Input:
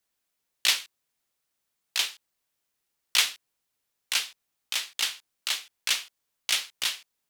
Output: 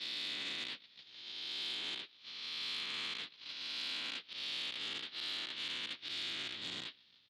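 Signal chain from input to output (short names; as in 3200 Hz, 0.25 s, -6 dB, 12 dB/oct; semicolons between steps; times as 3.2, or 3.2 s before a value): spectral swells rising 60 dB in 2.29 s; steep low-pass 4400 Hz 36 dB/oct; resonant low shelf 400 Hz +6.5 dB, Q 1.5; frequency-shifting echo 0.153 s, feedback 61%, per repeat -43 Hz, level -20.5 dB; limiter -15 dBFS, peak gain reduction 9 dB; HPF 92 Hz 24 dB/oct; band shelf 1400 Hz -8.5 dB 2.4 oct; treble ducked by the level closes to 2800 Hz, closed at -27 dBFS; compressor 4:1, threshold -45 dBFS, peak gain reduction 12.5 dB; gate -46 dBFS, range -19 dB; core saturation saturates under 2600 Hz; gain +6 dB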